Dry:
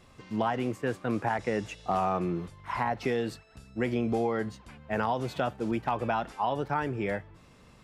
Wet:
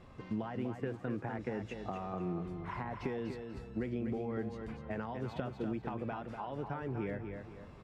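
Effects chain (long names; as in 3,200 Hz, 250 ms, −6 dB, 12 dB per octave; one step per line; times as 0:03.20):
downward compressor, threshold −35 dBFS, peak gain reduction 11.5 dB
low-pass filter 1,300 Hz 6 dB per octave
on a send: repeating echo 244 ms, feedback 32%, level −7 dB
on the sum: dynamic equaliser 820 Hz, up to −6 dB, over −51 dBFS, Q 1
level +2.5 dB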